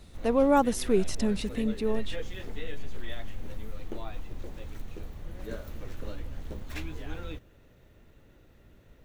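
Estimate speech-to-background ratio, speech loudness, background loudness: 15.0 dB, -27.0 LUFS, -42.0 LUFS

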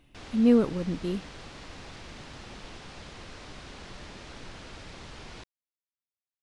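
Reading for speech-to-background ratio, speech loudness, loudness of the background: 19.0 dB, -26.0 LUFS, -45.0 LUFS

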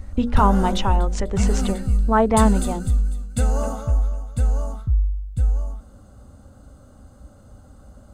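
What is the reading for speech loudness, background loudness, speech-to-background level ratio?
-22.0 LUFS, -24.0 LUFS, 2.0 dB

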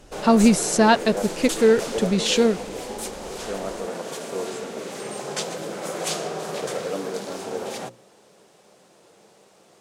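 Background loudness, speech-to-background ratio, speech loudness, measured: -30.0 LUFS, 10.5 dB, -19.5 LUFS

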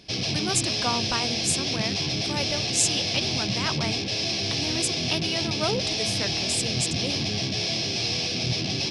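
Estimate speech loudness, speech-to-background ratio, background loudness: -29.5 LUFS, -4.5 dB, -25.0 LUFS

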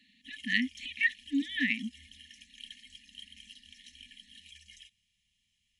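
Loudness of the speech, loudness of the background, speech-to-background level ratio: -31.5 LUFS, -50.5 LUFS, 19.0 dB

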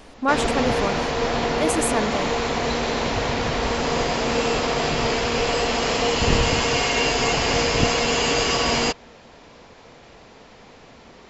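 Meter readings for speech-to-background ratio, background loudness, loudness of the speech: -4.0 dB, -21.5 LUFS, -25.5 LUFS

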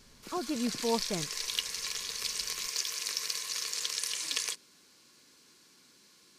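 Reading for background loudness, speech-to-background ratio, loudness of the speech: -33.5 LUFS, -1.5 dB, -35.0 LUFS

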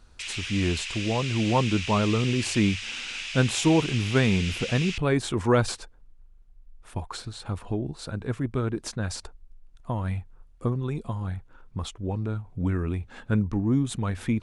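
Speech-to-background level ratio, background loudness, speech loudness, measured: 5.0 dB, -32.5 LUFS, -27.5 LUFS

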